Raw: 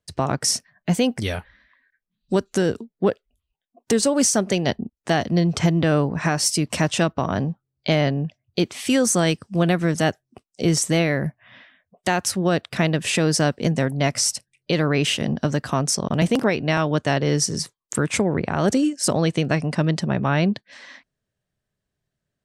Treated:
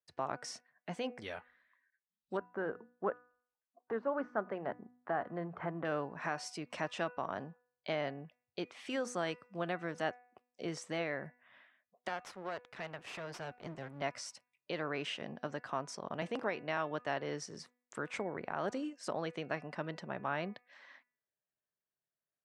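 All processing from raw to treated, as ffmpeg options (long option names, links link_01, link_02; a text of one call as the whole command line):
ffmpeg -i in.wav -filter_complex "[0:a]asettb=1/sr,asplit=3[link_01][link_02][link_03];[link_01]atrim=end=2.374[link_04];[link_02]atrim=start=2.37:end=5.85,asetpts=PTS-STARTPTS,afade=type=in:duration=0.004:curve=qsin,afade=type=out:start_time=3.476:duration=0.004:curve=qsin,deesser=0.75,lowpass=frequency=1400:width_type=q:width=1.9,bandreject=frequency=60:width_type=h:width=6,bandreject=frequency=120:width_type=h:width=6,bandreject=frequency=180:width_type=h:width=6,bandreject=frequency=240:width_type=h:width=6,bandreject=frequency=300:width_type=h:width=6[link_05];[link_03]atrim=start=5.846[link_06];[link_04][link_05]acrossfade=duration=0.004:curve1=hsin:curve2=qsin[link_07];[link_07][link_06]acrossfade=duration=0.004:curve1=qsin:curve2=hsin,asettb=1/sr,asplit=3[link_08][link_09][link_10];[link_08]atrim=end=12.084[link_11];[link_09]atrim=start=12.08:end=14.02,asetpts=PTS-STARTPTS,afade=type=in:duration=0.004:curve=qsin,afade=type=out:start_time=1.936:duration=0.004:curve=qsin,asubboost=boost=11:cutoff=120,aeval=exprs='max(val(0),0)':channel_layout=same[link_12];[link_10]atrim=start=14.016[link_13];[link_11][link_12]acrossfade=duration=0.004:curve1=hsin:curve2=qsin[link_14];[link_14][link_13]acrossfade=duration=0.004:curve1=qsin:curve2=hsin,lowpass=1100,aderivative,bandreject=frequency=246.2:width_type=h:width=4,bandreject=frequency=492.4:width_type=h:width=4,bandreject=frequency=738.6:width_type=h:width=4,bandreject=frequency=984.8:width_type=h:width=4,bandreject=frequency=1231:width_type=h:width=4,bandreject=frequency=1477.2:width_type=h:width=4,bandreject=frequency=1723.4:width_type=h:width=4,bandreject=frequency=1969.6:width_type=h:width=4,bandreject=frequency=2215.8:width_type=h:width=4,bandreject=frequency=2462:width_type=h:width=4,bandreject=frequency=2708.2:width_type=h:width=4,volume=7.5dB" out.wav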